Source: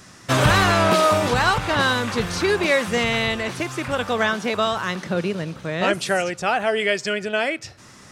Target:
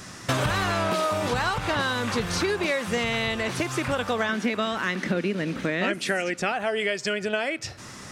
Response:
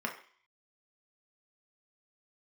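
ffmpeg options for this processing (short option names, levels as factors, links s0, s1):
-filter_complex "[0:a]asettb=1/sr,asplit=3[s0][s1][s2];[s0]atrim=end=4.294[s3];[s1]atrim=start=4.29:end=6.52,asetpts=PTS-STARTPTS,afade=t=in:d=0.004:c=qsin,afade=t=out:st=2.226:d=0.004:c=qsin,equalizer=f=125:t=o:w=1:g=-9,equalizer=f=250:t=o:w=1:g=12,equalizer=f=1000:t=o:w=1:g=-3,equalizer=f=2000:t=o:w=1:g=8[s4];[s2]atrim=start=6.516[s5];[s3][s4]acrossfade=d=0.004:c1=hsin:c2=qsin[s6];[s6][s5]acrossfade=d=0.004:c1=qsin:c2=hsin,acompressor=threshold=0.0398:ratio=5,volume=1.68"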